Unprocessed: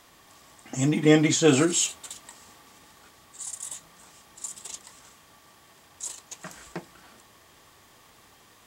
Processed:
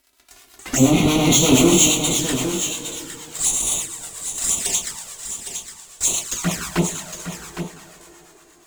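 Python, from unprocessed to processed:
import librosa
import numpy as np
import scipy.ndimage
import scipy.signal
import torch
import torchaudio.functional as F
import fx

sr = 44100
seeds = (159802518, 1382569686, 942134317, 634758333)

p1 = fx.fuzz(x, sr, gain_db=39.0, gate_db=-47.0)
p2 = fx.rev_double_slope(p1, sr, seeds[0], early_s=0.42, late_s=5.0, knee_db=-19, drr_db=-3.0)
p3 = fx.harmonic_tremolo(p2, sr, hz=8.5, depth_pct=50, crossover_hz=730.0)
p4 = fx.env_flanger(p3, sr, rest_ms=3.1, full_db=-14.0)
p5 = p4 + fx.echo_single(p4, sr, ms=811, db=-9.0, dry=0)
y = p5 * librosa.db_to_amplitude(-1.0)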